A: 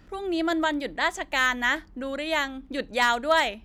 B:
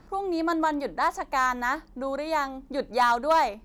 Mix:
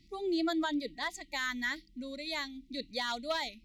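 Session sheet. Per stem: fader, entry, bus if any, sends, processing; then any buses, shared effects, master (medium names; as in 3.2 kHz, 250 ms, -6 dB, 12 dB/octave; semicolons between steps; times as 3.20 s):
+1.5 dB, 0.00 s, no send, expander on every frequency bin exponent 2; elliptic high-pass 240 Hz; auto duck -10 dB, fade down 1.85 s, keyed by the second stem
-10.0 dB, 0.00 s, polarity flipped, no send, FFT band-reject 350–1900 Hz; peaking EQ 3.8 kHz +13 dB 1.4 oct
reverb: none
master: peak limiter -22.5 dBFS, peak gain reduction 7.5 dB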